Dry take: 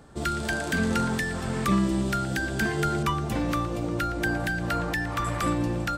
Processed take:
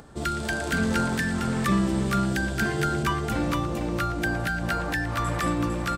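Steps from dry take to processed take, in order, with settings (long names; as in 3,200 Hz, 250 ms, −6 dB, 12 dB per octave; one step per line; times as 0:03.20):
upward compression, threshold −44 dBFS
on a send: single-tap delay 454 ms −6 dB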